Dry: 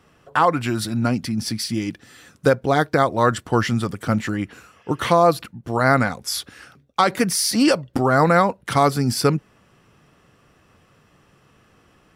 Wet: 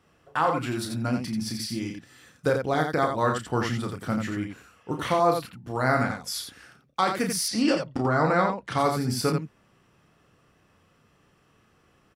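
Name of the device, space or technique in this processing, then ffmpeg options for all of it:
slapback doubling: -filter_complex "[0:a]asplit=3[a][b][c];[b]adelay=32,volume=-6dB[d];[c]adelay=87,volume=-6dB[e];[a][d][e]amix=inputs=3:normalize=0,asettb=1/sr,asplit=3[f][g][h];[f]atrim=end=7.484[i];[g]atrim=start=7.48:end=8.78,asetpts=PTS-STARTPTS,afade=t=in:d=0.004:c=qsin,afade=t=out:st=1.296:d=0.004:c=qsin,lowpass=6.3k[j];[h]atrim=start=8.776[k];[i][j]acrossfade=d=0.004:c1=hsin:c2=qsin[l];[l][k]acrossfade=d=0.004:c1=qsin:c2=hsin,volume=-8dB"

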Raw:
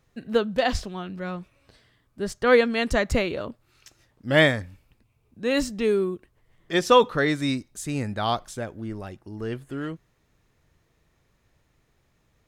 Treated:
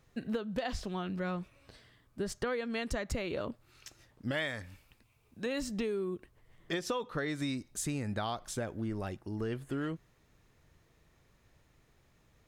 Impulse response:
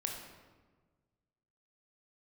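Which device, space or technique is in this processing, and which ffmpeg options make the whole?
serial compression, peaks first: -filter_complex "[0:a]acompressor=threshold=-28dB:ratio=4,acompressor=threshold=-32dB:ratio=3,asettb=1/sr,asplit=3[a][b][c];[a]atrim=end=4.314[d];[b]atrim=start=4.31:end=5.46,asetpts=PTS-STARTPTS,afade=t=in:d=0.004:c=qsin,afade=t=out:st=1.146:d=0.004:c=qsin,tiltshelf=f=680:g=-4.5[e];[c]atrim=start=5.456[f];[d][e]acrossfade=d=0.004:c1=hsin:c2=qsin[g];[g][f]acrossfade=d=0.004:c1=qsin:c2=hsin"

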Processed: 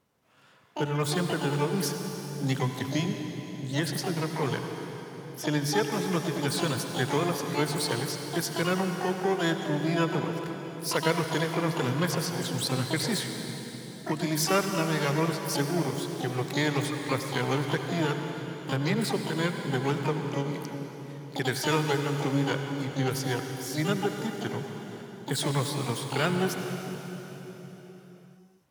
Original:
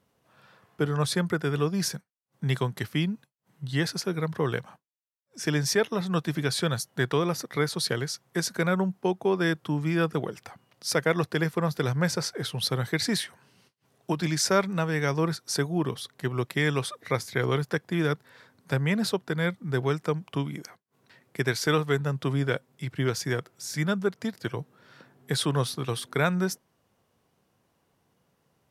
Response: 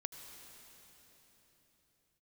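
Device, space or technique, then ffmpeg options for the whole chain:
shimmer-style reverb: -filter_complex "[0:a]asplit=2[a][b];[b]asetrate=88200,aresample=44100,atempo=0.5,volume=-5dB[c];[a][c]amix=inputs=2:normalize=0[d];[1:a]atrim=start_sample=2205[e];[d][e]afir=irnorm=-1:irlink=0,asettb=1/sr,asplit=3[f][g][h];[f]atrim=end=5.424[i];[g]atrim=start=5.42:end=5.92,asetpts=PTS-STARTPTS,afade=t=in:d=0.004:c=qsin,afade=t=out:st=0.496:d=0.004:c=qsin,highshelf=f=7.9k:g=-6.5[j];[h]atrim=start=5.916[k];[i][j]acrossfade=d=0.004:c1=hsin:c2=qsin[l];[l][k]acrossfade=d=0.004:c1=qsin:c2=hsin"

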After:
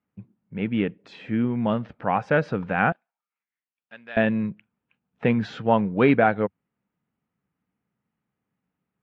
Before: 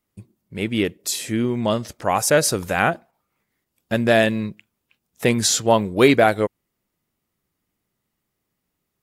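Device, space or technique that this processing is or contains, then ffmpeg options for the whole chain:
bass cabinet: -filter_complex "[0:a]highpass=87,equalizer=f=89:t=q:w=4:g=-6,equalizer=f=190:t=q:w=4:g=3,equalizer=f=360:t=q:w=4:g=-9,equalizer=f=610:t=q:w=4:g=-6,equalizer=f=1.1k:t=q:w=4:g=-4,equalizer=f=2k:t=q:w=4:g=-6,lowpass=f=2.3k:w=0.5412,lowpass=f=2.3k:w=1.3066,asettb=1/sr,asplit=3[a][b][c];[a]atrim=end=2.924[d];[b]atrim=start=2.92:end=4.17,asetpts=PTS-STARTPTS,afade=t=in:d=0.004:c=qsin,afade=t=out:st=1.246:d=0.004:c=qsin,aderivative[e];[c]atrim=start=4.166[f];[d][e]acrossfade=d=0.004:c1=hsin:c2=qsin[g];[g][f]acrossfade=d=0.004:c1=qsin:c2=hsin"

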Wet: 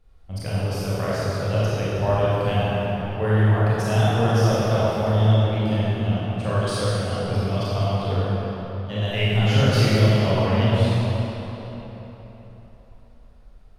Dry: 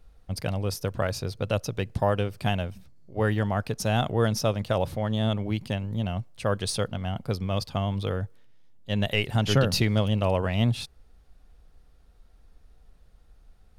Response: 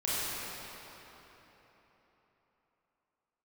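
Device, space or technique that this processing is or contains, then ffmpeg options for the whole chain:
swimming-pool hall: -filter_complex "[1:a]atrim=start_sample=2205[a];[0:a][a]afir=irnorm=-1:irlink=0,highshelf=f=6k:g=-5,volume=-4dB"

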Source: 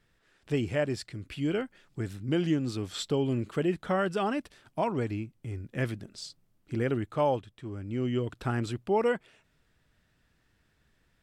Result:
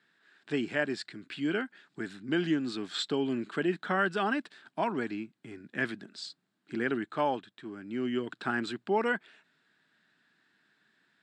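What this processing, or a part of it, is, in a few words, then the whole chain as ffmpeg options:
television speaker: -af "highpass=f=190:w=0.5412,highpass=f=190:w=1.3066,equalizer=f=520:t=q:w=4:g=-9,equalizer=f=1.6k:t=q:w=4:g=9,equalizer=f=3.9k:t=q:w=4:g=6,equalizer=f=6k:t=q:w=4:g=-7,lowpass=f=7.9k:w=0.5412,lowpass=f=7.9k:w=1.3066"

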